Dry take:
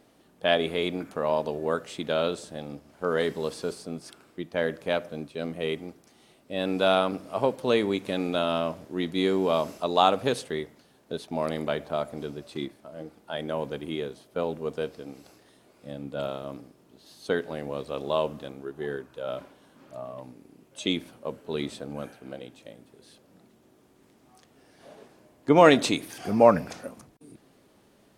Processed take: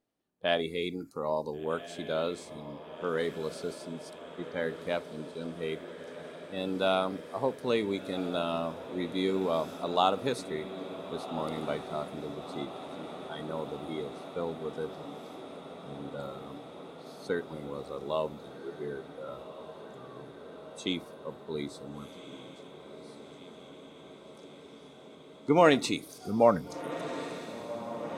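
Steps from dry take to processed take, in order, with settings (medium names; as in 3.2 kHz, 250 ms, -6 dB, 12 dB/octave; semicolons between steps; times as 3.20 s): spectral noise reduction 19 dB; echo that smears into a reverb 1463 ms, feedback 78%, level -12.5 dB; trim -5 dB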